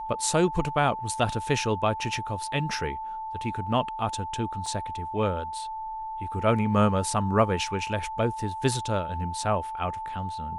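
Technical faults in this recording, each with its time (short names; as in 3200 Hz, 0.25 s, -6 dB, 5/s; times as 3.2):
tone 880 Hz -32 dBFS
4.66 gap 3 ms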